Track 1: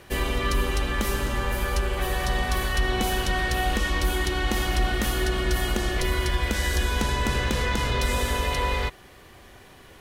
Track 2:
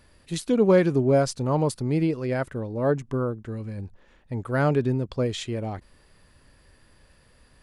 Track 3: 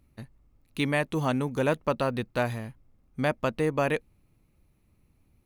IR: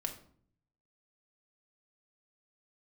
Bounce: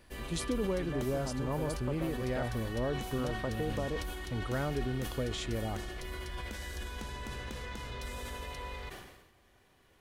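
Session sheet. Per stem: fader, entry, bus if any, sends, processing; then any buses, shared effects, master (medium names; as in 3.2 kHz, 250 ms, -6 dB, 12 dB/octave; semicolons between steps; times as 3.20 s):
-17.0 dB, 0.00 s, no bus, no send, none
-5.0 dB, 0.00 s, bus A, no send, none
-6.0 dB, 0.00 s, bus A, no send, low-pass that closes with the level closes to 750 Hz
bus A: 0.0 dB, compression, threshold -31 dBFS, peak gain reduction 12.5 dB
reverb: none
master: decay stretcher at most 53 dB/s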